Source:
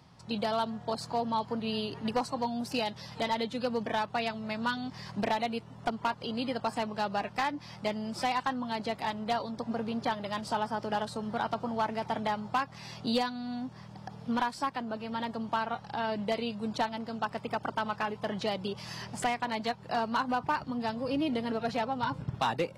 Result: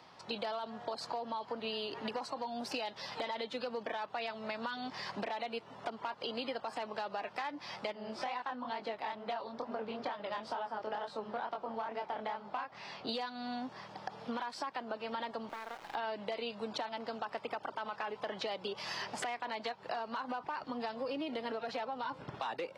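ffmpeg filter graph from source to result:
ffmpeg -i in.wav -filter_complex "[0:a]asettb=1/sr,asplit=3[link_01][link_02][link_03];[link_01]atrim=end=7.924[link_04];[link_02]atrim=start=7.92:end=13.09,asetpts=PTS-STARTPTS,afade=type=in:duration=0.004:curve=qsin,afade=type=out:start_time=5.166:duration=0.004:curve=qsin,lowpass=frequency=3100:poles=1,flanger=delay=20:depth=7.8:speed=2.2[link_05];[link_03]atrim=start=13.086[link_06];[link_04][link_05]acrossfade=duration=0.004:curve1=hsin:curve2=qsin[link_07];[link_07][link_06]acrossfade=duration=0.004:curve1=qsin:curve2=hsin,asettb=1/sr,asplit=3[link_08][link_09][link_10];[link_08]atrim=end=15.494[link_11];[link_09]atrim=start=15.49:end=15.95,asetpts=PTS-STARTPTS,afade=type=in:duration=0.004:curve=qsin,afade=type=out:start_time=0.456:duration=0.004:curve=qsin,lowpass=3100,acompressor=threshold=-40dB:ratio=8:attack=3.2:release=140:knee=1:detection=peak,acrusher=bits=6:dc=4:mix=0:aa=0.000001[link_12];[link_10]atrim=start=15.946[link_13];[link_11][link_12]acrossfade=duration=0.004:curve1=hsin:curve2=qsin[link_14];[link_14][link_13]acrossfade=duration=0.004:curve1=qsin:curve2=hsin,acrossover=split=320 5400:gain=0.1 1 0.251[link_15][link_16][link_17];[link_15][link_16][link_17]amix=inputs=3:normalize=0,alimiter=level_in=3dB:limit=-24dB:level=0:latency=1:release=27,volume=-3dB,acompressor=threshold=-41dB:ratio=6,volume=5.5dB" out.wav

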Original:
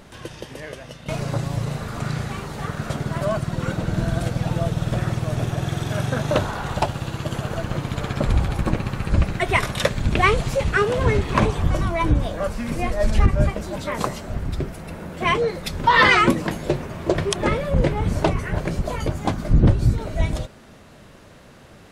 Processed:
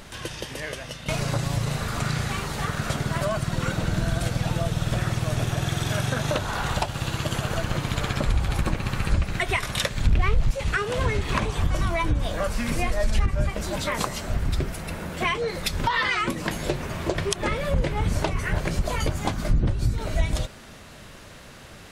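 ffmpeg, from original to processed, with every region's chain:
ffmpeg -i in.wav -filter_complex "[0:a]asettb=1/sr,asplit=3[link_01][link_02][link_03];[link_01]atrim=end=10.074[link_04];[link_02]atrim=start=10.07:end=10.51,asetpts=PTS-STARTPTS,afade=type=in:duration=0.004:curve=qsin,afade=type=out:start_time=0.436:duration=0.004:curve=qsin,aeval=exprs='val(0)+0.5*0.0841*sgn(val(0))':channel_layout=same,aemphasis=mode=reproduction:type=bsi[link_05];[link_03]atrim=start=10.506[link_06];[link_04][link_05]acrossfade=duration=0.004:curve1=hsin:curve2=qsin[link_07];[link_07][link_06]acrossfade=duration=0.004:curve1=qsin:curve2=hsin,tiltshelf=frequency=1100:gain=-4.5,acompressor=threshold=-25dB:ratio=6,lowshelf=frequency=91:gain=7.5,volume=2.5dB" out.wav

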